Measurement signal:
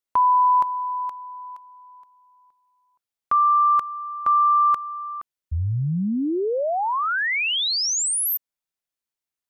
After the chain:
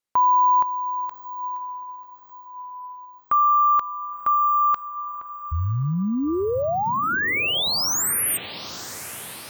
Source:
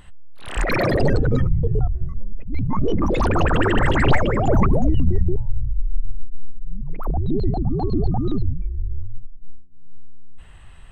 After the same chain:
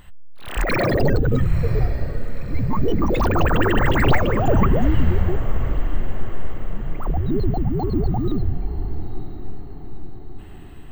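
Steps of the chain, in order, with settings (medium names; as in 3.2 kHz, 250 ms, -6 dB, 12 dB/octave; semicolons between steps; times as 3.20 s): careless resampling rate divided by 2×, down none, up hold; echo that smears into a reverb 961 ms, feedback 54%, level -13.5 dB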